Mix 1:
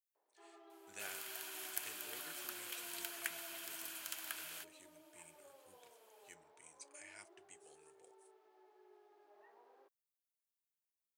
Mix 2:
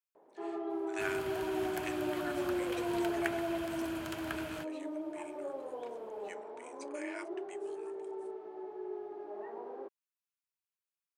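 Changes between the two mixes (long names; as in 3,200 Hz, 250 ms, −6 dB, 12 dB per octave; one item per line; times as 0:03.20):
speech: add linear-phase brick-wall high-pass 900 Hz
second sound −5.5 dB
master: remove first difference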